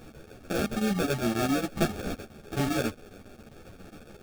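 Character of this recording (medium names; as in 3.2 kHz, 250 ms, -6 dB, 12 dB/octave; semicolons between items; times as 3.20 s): a quantiser's noise floor 8-bit, dither triangular; chopped level 7.4 Hz, depth 65%, duty 80%; aliases and images of a low sample rate 1 kHz, jitter 0%; a shimmering, thickened sound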